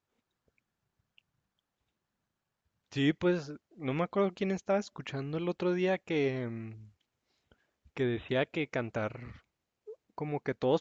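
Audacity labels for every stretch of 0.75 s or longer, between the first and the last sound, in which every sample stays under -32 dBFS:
6.560000	7.970000	silence
9.160000	10.180000	silence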